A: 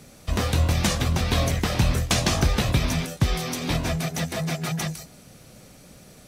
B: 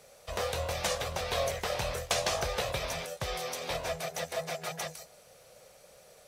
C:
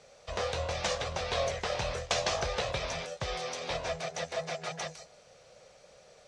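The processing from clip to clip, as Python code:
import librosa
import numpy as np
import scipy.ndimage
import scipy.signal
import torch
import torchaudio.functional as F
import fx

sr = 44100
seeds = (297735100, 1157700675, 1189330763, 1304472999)

y1 = fx.low_shelf_res(x, sr, hz=380.0, db=-10.5, q=3.0)
y1 = fx.dmg_crackle(y1, sr, seeds[0], per_s=59.0, level_db=-49.0)
y1 = y1 * 10.0 ** (-7.0 / 20.0)
y2 = scipy.signal.sosfilt(scipy.signal.butter(4, 6900.0, 'lowpass', fs=sr, output='sos'), y1)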